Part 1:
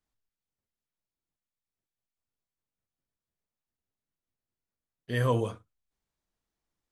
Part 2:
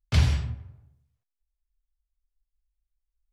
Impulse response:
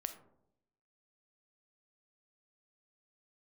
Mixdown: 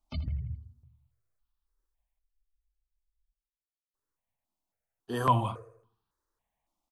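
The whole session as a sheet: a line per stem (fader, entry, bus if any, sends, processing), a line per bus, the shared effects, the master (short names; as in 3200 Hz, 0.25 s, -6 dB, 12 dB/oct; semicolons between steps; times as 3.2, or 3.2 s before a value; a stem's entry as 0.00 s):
+1.5 dB, 0.00 s, muted 2.19–3.94, no send, echo send -19.5 dB, bell 840 Hz +8 dB 1.8 oct
-4.5 dB, 0.00 s, send -8.5 dB, echo send -12 dB, spectral gate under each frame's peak -25 dB strong; compressor 2:1, threshold -26 dBFS, peak gain reduction 6.5 dB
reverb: on, RT60 0.80 s, pre-delay 4 ms
echo: feedback echo 81 ms, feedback 47%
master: step phaser 3.6 Hz 450–2100 Hz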